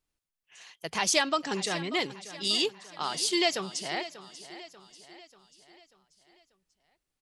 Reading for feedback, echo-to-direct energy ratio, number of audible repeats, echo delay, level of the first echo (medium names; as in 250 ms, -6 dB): 50%, -13.5 dB, 4, 589 ms, -15.0 dB